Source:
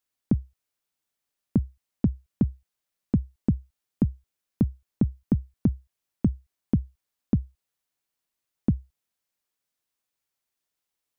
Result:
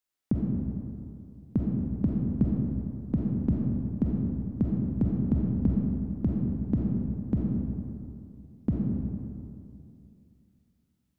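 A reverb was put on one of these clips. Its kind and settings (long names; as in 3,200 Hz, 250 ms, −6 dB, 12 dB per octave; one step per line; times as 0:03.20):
comb and all-pass reverb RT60 2.6 s, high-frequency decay 0.45×, pre-delay 5 ms, DRR −3 dB
level −4.5 dB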